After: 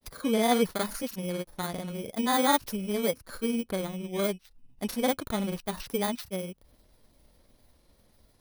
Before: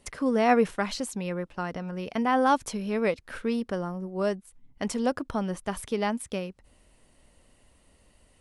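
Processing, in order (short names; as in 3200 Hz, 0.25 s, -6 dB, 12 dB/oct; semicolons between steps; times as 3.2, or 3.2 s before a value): FFT order left unsorted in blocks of 16 samples; grains, spray 31 ms, pitch spread up and down by 0 st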